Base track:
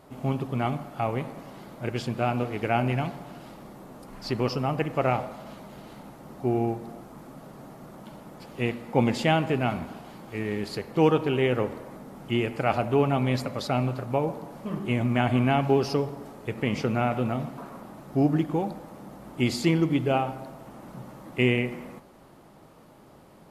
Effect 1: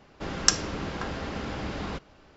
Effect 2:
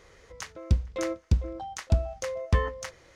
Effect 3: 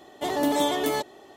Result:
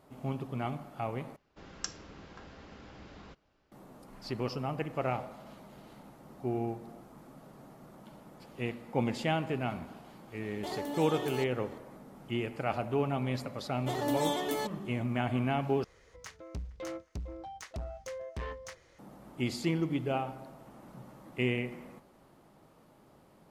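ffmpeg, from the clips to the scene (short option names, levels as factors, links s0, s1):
-filter_complex "[3:a]asplit=2[s0][s1];[0:a]volume=0.398[s2];[s0]alimiter=limit=0.0708:level=0:latency=1:release=151[s3];[2:a]asoftclip=type=tanh:threshold=0.0376[s4];[s2]asplit=3[s5][s6][s7];[s5]atrim=end=1.364[s8];[1:a]atrim=end=2.36,asetpts=PTS-STARTPTS,volume=0.141[s9];[s6]atrim=start=3.716:end=15.844[s10];[s4]atrim=end=3.15,asetpts=PTS-STARTPTS,volume=0.501[s11];[s7]atrim=start=18.986[s12];[s3]atrim=end=1.36,asetpts=PTS-STARTPTS,volume=0.473,afade=t=in:d=0.004:c=hsin,afade=t=out:st=1.356:d=0.004:c=hsin,adelay=459522S[s13];[s1]atrim=end=1.36,asetpts=PTS-STARTPTS,volume=0.422,afade=t=in:d=0.004:c=hsin,afade=t=out:st=1.356:d=0.004:c=hsin,adelay=13650[s14];[s8][s9]acrossfade=d=0.004:c1=hsin:c2=hsin[s15];[s15][s10]acrossfade=d=0.004:c1=hsin:c2=hsin[s16];[s16][s11]acrossfade=d=0.004:c1=hsin:c2=hsin[s17];[s17][s12]acrossfade=d=0.004:c1=hsin:c2=hsin[s18];[s18][s13][s14]amix=inputs=3:normalize=0"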